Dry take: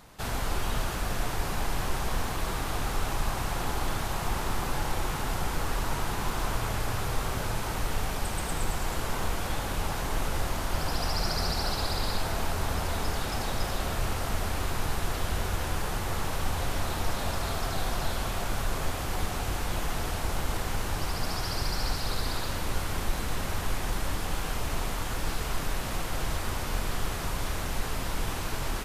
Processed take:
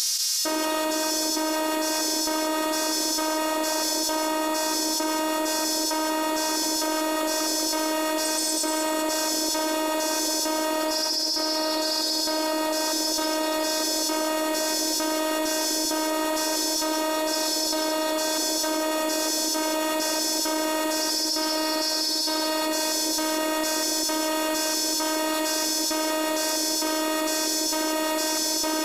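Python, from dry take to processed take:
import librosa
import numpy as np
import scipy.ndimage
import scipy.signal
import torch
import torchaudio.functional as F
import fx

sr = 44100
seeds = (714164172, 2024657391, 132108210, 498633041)

y = fx.filter_lfo_highpass(x, sr, shape='square', hz=1.1, low_hz=420.0, high_hz=5400.0, q=4.3)
y = fx.robotise(y, sr, hz=312.0)
y = fx.echo_split(y, sr, split_hz=670.0, low_ms=396, high_ms=193, feedback_pct=52, wet_db=-3)
y = fx.env_flatten(y, sr, amount_pct=100)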